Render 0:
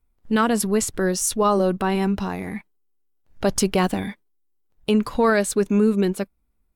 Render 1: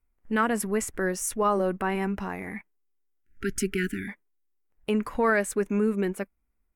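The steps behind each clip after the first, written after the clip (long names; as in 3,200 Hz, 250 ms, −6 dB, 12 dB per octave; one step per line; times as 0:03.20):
time-frequency box erased 0:03.25–0:04.08, 410–1,300 Hz
octave-band graphic EQ 125/2,000/4,000 Hz −6/+8/−12 dB
level −5.5 dB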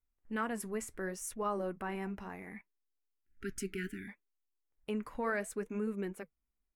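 flanger 0.67 Hz, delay 0 ms, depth 7.8 ms, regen −77%
level −7 dB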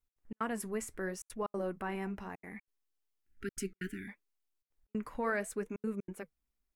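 gate pattern "x.xx.xxxxxxxxx" 185 BPM −60 dB
level +1 dB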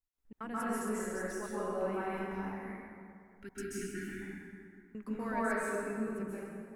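dense smooth reverb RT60 2.3 s, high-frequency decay 0.55×, pre-delay 120 ms, DRR −9.5 dB
level −8.5 dB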